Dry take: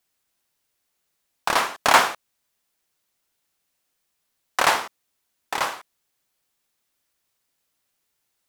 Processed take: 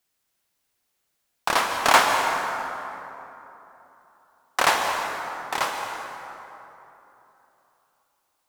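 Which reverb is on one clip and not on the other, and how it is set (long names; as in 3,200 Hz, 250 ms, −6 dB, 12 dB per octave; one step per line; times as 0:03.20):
dense smooth reverb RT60 3.3 s, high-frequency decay 0.5×, pre-delay 120 ms, DRR 3.5 dB
level −1 dB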